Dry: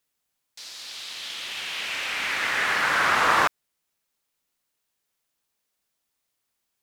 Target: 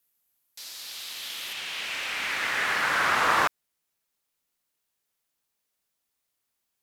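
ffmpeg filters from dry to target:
ffmpeg -i in.wav -af "asetnsamples=nb_out_samples=441:pad=0,asendcmd='1.53 equalizer g 3',equalizer=frequency=13000:width_type=o:width=0.65:gain=14.5,volume=-2.5dB" out.wav

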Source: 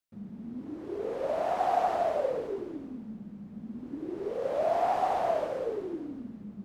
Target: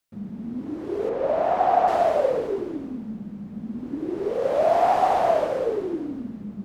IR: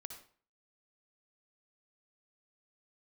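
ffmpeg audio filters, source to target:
-filter_complex "[0:a]asettb=1/sr,asplit=3[link_01][link_02][link_03];[link_01]atrim=end=1.094[link_04];[link_02]atrim=start=1.09:end=1.88,asetpts=PTS-STARTPTS,afade=type=in:duration=0.004:curve=qsin,afade=type=out:start_time=0.786:duration=0.004:curve=qsin,lowpass=frequency=2000:poles=1[link_05];[link_03]atrim=start=1.876[link_06];[link_04][link_05]acrossfade=duration=0.004:curve1=hsin:curve2=qsin[link_07];[link_07][link_06]acrossfade=duration=0.004:curve1=qsin:curve2=hsin,volume=8dB"

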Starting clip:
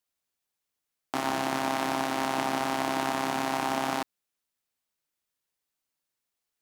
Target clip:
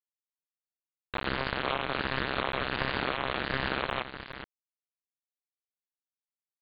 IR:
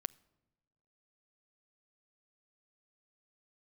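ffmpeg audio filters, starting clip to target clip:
-af "afwtdn=0.0141,aresample=8000,acrusher=bits=3:mix=0:aa=0.000001,aresample=44100,aecho=1:1:421:0.299,aeval=exprs='val(0)*sin(2*PI*520*n/s+520*0.55/1.4*sin(2*PI*1.4*n/s))':channel_layout=same"

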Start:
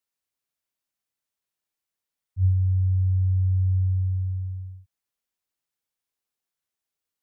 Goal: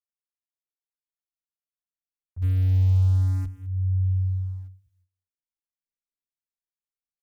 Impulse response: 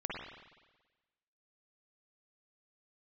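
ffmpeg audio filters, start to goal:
-filter_complex "[0:a]asettb=1/sr,asplit=3[link_01][link_02][link_03];[link_01]atrim=end=2.424[link_04];[link_02]atrim=start=2.42:end=3.45,asetpts=PTS-STARTPTS,afade=type=in:duration=0.004:curve=qsin,afade=type=out:start_time=1.026:duration=0.004:curve=qsin,aeval=exprs='val(0)+0.5*0.0316*sgn(val(0))':channel_layout=same[link_05];[link_03]atrim=start=3.446[link_06];[link_04][link_05]acrossfade=duration=0.004:curve1=hsin:curve2=qsin[link_07];[link_07][link_06]acrossfade=duration=0.004:curve1=qsin:curve2=hsin,equalizer=frequency=99:width_type=o:width=0.76:gain=-13,asplit=2[link_08][link_09];[link_09]aecho=0:1:207|414:0.158|0.0333[link_10];[link_08][link_10]amix=inputs=2:normalize=0,asplit=3[link_11][link_12][link_13];[link_11]afade=type=out:start_time=4.02:duration=0.02[link_14];[link_12]aeval=exprs='val(0)*gte(abs(val(0)),0.00178)':channel_layout=same,afade=type=in:start_time=4.02:duration=0.02,afade=type=out:start_time=4.66:duration=0.02[link_15];[link_13]afade=type=in:start_time=4.66:duration=0.02[link_16];[link_14][link_15][link_16]amix=inputs=3:normalize=0,asubboost=boost=9:cutoff=200,agate=range=-18dB:threshold=-57dB:ratio=16:detection=peak,asplit=2[link_17][link_18];[link_18]adelay=10.7,afreqshift=0.76[link_19];[link_17][link_19]amix=inputs=2:normalize=1"

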